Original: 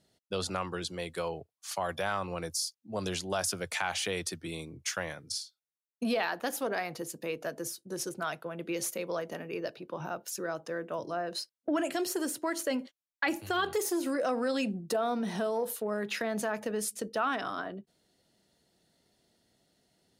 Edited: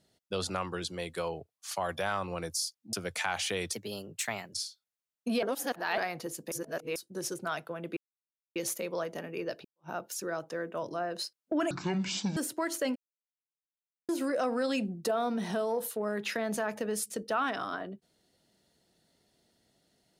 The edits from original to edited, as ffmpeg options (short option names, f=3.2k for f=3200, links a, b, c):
-filter_complex "[0:a]asplit=14[a][b][c][d][e][f][g][h][i][j][k][l][m][n];[a]atrim=end=2.932[o];[b]atrim=start=3.488:end=4.294[p];[c]atrim=start=4.29:end=5.29,asetpts=PTS-STARTPTS,asetrate=54684,aresample=44100[q];[d]atrim=start=5.286:end=6.182[r];[e]atrim=start=6.178:end=6.732,asetpts=PTS-STARTPTS,areverse[s];[f]atrim=start=6.728:end=7.272[t];[g]atrim=start=7.268:end=7.712,asetpts=PTS-STARTPTS,areverse[u];[h]atrim=start=7.708:end=8.72,asetpts=PTS-STARTPTS,afade=t=out:st=1.008:d=0.004:c=hsin,apad=pad_dur=0.59[v];[i]atrim=start=8.72:end=9.81,asetpts=PTS-STARTPTS,afade=t=in:d=0.004:c=hsin,afade=t=out:st=1.086:d=0.004:c=hsin[w];[j]atrim=start=9.81:end=11.874,asetpts=PTS-STARTPTS,afade=t=in:d=0.25:c=exp[x];[k]atrim=start=11.87:end=12.22,asetpts=PTS-STARTPTS,asetrate=23373,aresample=44100[y];[l]atrim=start=12.216:end=12.81,asetpts=PTS-STARTPTS,afade=t=out:st=0.59:d=0.004:c=hsin[z];[m]atrim=start=12.81:end=13.94,asetpts=PTS-STARTPTS,volume=0[aa];[n]atrim=start=13.94,asetpts=PTS-STARTPTS,afade=t=in:d=0.004:c=hsin[ab];[o][p]acrossfade=d=0.004:c1=hsin:c2=hsin[ac];[ac][q]acrossfade=d=0.004:c1=hsin:c2=hsin[ad];[ad][r]acrossfade=d=0.004:c1=hsin:c2=hsin[ae];[ae][s]acrossfade=d=0.004:c1=hsin:c2=hsin[af];[af][t]acrossfade=d=0.004:c1=hsin:c2=hsin[ag];[ag][u]acrossfade=d=0.004:c1=hsin:c2=hsin[ah];[v][w][x]concat=n=3:v=0:a=1[ai];[ah][ai]acrossfade=d=0.004:c1=hsin:c2=hsin[aj];[aj][y]acrossfade=d=0.004:c1=hsin:c2=hsin[ak];[z][aa][ab]concat=n=3:v=0:a=1[al];[ak][al]acrossfade=d=0.004:c1=hsin:c2=hsin"